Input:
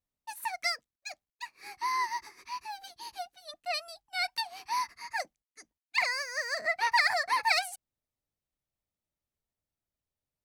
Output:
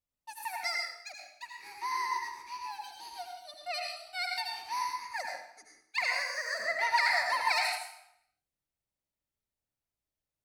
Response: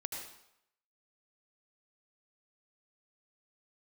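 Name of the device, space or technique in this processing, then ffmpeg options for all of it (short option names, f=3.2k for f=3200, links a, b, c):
bathroom: -filter_complex "[1:a]atrim=start_sample=2205[a];[0:a][a]afir=irnorm=-1:irlink=0,volume=-1.5dB"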